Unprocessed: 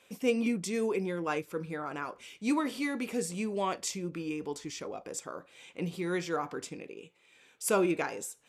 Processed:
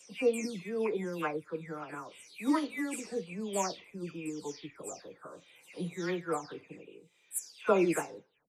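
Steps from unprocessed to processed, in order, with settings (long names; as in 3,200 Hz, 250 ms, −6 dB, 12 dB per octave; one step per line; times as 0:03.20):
every frequency bin delayed by itself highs early, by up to 302 ms
expander for the loud parts 1.5 to 1, over −40 dBFS
level +2.5 dB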